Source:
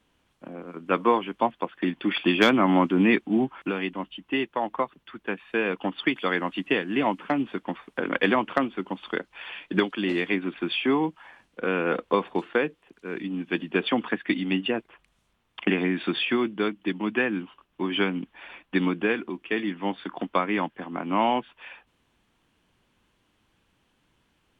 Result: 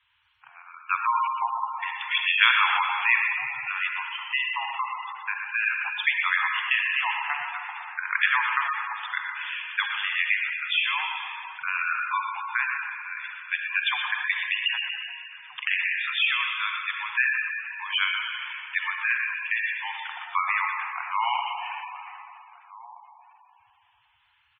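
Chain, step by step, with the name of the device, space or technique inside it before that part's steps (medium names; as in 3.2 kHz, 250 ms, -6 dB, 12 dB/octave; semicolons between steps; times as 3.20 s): PA in a hall (high-pass 200 Hz 6 dB/octave; peaking EQ 2.4 kHz +5.5 dB 1.1 oct; delay 119 ms -7.5 dB; reverberation RT60 2.9 s, pre-delay 40 ms, DRR 1.5 dB); inverse Chebyshev band-stop 180–580 Hz, stop band 40 dB; peaking EQ 430 Hz +3.5 dB 1.3 oct; echo from a far wall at 270 m, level -16 dB; spectral gate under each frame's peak -15 dB strong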